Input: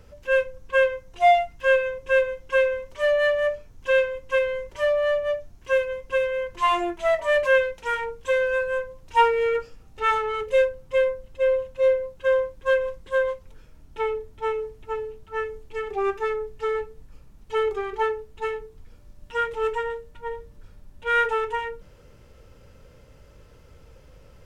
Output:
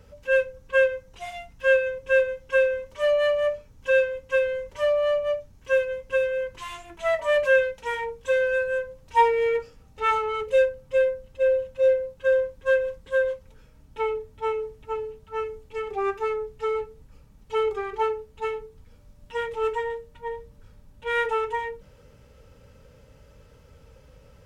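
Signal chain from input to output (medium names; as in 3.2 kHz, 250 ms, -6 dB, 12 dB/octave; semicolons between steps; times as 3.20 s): comb of notches 350 Hz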